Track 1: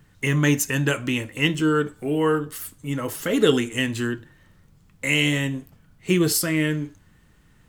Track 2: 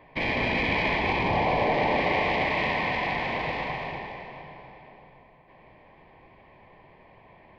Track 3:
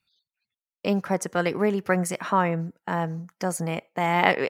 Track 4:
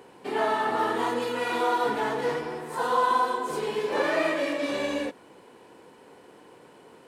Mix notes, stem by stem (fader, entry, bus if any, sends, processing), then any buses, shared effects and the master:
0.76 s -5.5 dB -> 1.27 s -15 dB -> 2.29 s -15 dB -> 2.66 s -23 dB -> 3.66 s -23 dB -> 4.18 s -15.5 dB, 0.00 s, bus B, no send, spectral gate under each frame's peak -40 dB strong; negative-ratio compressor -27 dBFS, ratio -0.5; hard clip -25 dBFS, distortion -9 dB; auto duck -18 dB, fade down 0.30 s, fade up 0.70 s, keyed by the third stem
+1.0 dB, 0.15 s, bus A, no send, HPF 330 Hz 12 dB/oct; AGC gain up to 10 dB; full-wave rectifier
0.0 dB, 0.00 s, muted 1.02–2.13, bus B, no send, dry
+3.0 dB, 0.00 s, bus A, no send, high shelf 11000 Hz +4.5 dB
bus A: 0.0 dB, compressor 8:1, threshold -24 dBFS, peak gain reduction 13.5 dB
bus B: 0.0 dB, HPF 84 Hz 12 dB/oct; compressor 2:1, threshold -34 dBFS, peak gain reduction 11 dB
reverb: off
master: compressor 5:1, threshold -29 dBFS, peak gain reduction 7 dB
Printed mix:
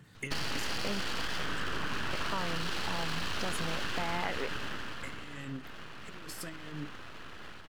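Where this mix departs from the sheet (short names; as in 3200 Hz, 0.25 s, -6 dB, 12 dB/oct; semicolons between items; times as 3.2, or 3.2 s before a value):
stem 1: missing hard clip -25 dBFS, distortion -9 dB; stem 4: muted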